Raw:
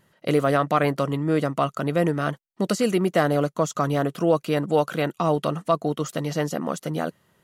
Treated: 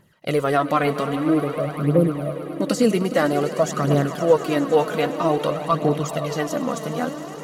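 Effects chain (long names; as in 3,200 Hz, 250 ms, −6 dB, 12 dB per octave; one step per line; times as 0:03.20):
time-frequency box erased 0:01.24–0:02.38, 660–9,100 Hz
echo that builds up and dies away 103 ms, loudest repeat 5, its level −16 dB
phase shifter 0.51 Hz, delay 4.8 ms, feedback 53%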